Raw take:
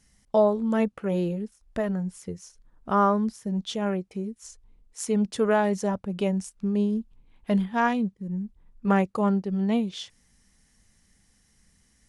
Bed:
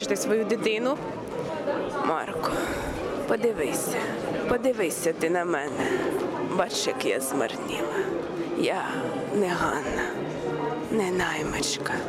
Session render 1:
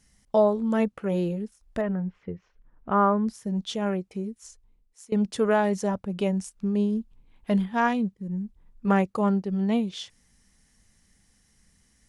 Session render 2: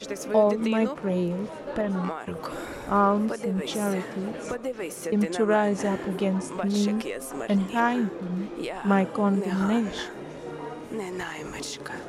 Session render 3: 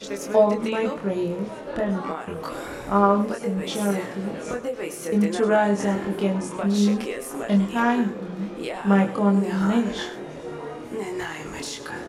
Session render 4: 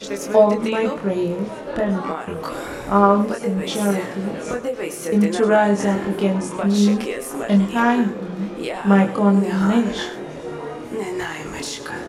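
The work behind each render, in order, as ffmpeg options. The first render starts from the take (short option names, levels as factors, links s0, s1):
-filter_complex "[0:a]asettb=1/sr,asplit=3[s0][s1][s2];[s0]atrim=end=1.814[s3];[s1]atrim=start=1.81:end=3.27,asetpts=PTS-STARTPTS,afade=t=in:d=0.004:c=qsin,afade=t=out:st=1.456:d=0.004:c=qsin,lowpass=f=2700:w=0.5412,lowpass=f=2700:w=1.3066[s4];[s2]atrim=start=3.266[s5];[s3][s4]acrossfade=d=0.004:c1=hsin:c2=qsin[s6];[s6][s5]acrossfade=d=0.004:c1=qsin:c2=hsin,asplit=2[s7][s8];[s7]atrim=end=5.12,asetpts=PTS-STARTPTS,afade=t=out:st=4.27:d=0.85:silence=0.0749894[s9];[s8]atrim=start=5.12,asetpts=PTS-STARTPTS,afade=t=in:d=0.004:c=hsin:silence=0.0749894[s10];[s9][s10]concat=n=2:v=0:a=1"
-filter_complex "[1:a]volume=0.422[s0];[0:a][s0]amix=inputs=2:normalize=0"
-filter_complex "[0:a]asplit=2[s0][s1];[s1]adelay=25,volume=0.75[s2];[s0][s2]amix=inputs=2:normalize=0,aecho=1:1:102:0.2"
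-af "volume=1.58"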